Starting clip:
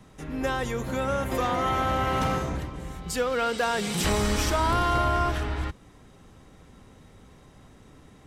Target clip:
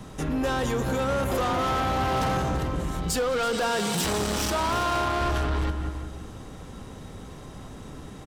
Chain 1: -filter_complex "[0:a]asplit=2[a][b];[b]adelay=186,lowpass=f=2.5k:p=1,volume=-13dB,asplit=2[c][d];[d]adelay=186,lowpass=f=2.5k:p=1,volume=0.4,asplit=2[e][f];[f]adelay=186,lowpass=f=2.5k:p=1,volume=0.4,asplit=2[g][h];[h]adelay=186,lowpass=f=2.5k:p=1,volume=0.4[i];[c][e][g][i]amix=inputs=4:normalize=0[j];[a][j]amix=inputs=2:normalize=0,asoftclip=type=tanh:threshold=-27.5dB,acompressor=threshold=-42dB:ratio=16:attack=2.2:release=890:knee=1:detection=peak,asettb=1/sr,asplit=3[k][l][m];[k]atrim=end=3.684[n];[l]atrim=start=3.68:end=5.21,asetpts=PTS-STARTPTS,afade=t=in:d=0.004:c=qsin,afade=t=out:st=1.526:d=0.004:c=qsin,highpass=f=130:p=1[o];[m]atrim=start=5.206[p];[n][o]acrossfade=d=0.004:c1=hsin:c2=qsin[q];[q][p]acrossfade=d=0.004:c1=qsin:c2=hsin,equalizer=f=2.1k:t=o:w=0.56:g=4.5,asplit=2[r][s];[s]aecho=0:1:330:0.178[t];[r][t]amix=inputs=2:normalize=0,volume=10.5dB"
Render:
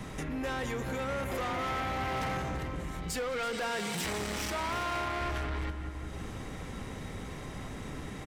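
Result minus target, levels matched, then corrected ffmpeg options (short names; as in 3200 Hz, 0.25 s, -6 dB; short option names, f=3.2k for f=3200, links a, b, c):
compressor: peak gain reduction +9 dB; 2000 Hz band +5.0 dB
-filter_complex "[0:a]asplit=2[a][b];[b]adelay=186,lowpass=f=2.5k:p=1,volume=-13dB,asplit=2[c][d];[d]adelay=186,lowpass=f=2.5k:p=1,volume=0.4,asplit=2[e][f];[f]adelay=186,lowpass=f=2.5k:p=1,volume=0.4,asplit=2[g][h];[h]adelay=186,lowpass=f=2.5k:p=1,volume=0.4[i];[c][e][g][i]amix=inputs=4:normalize=0[j];[a][j]amix=inputs=2:normalize=0,asoftclip=type=tanh:threshold=-27.5dB,acompressor=threshold=-32.5dB:ratio=16:attack=2.2:release=890:knee=1:detection=peak,asettb=1/sr,asplit=3[k][l][m];[k]atrim=end=3.684[n];[l]atrim=start=3.68:end=5.21,asetpts=PTS-STARTPTS,afade=t=in:d=0.004:c=qsin,afade=t=out:st=1.526:d=0.004:c=qsin,highpass=f=130:p=1[o];[m]atrim=start=5.206[p];[n][o]acrossfade=d=0.004:c1=hsin:c2=qsin[q];[q][p]acrossfade=d=0.004:c1=qsin:c2=hsin,equalizer=f=2.1k:t=o:w=0.56:g=-4.5,asplit=2[r][s];[s]aecho=0:1:330:0.178[t];[r][t]amix=inputs=2:normalize=0,volume=10.5dB"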